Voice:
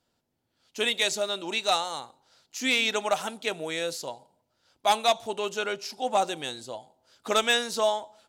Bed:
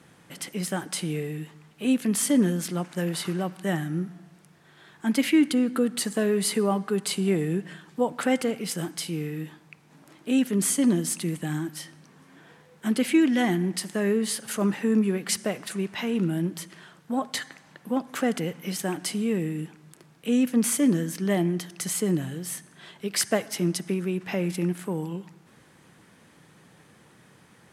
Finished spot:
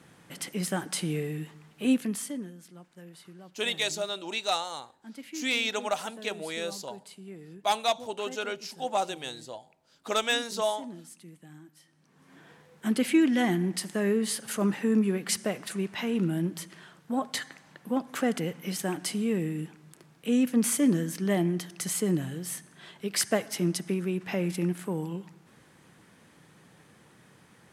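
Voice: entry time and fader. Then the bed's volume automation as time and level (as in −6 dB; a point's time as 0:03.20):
2.80 s, −3.5 dB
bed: 0:01.93 −1 dB
0:02.52 −20.5 dB
0:11.84 −20.5 dB
0:12.33 −2 dB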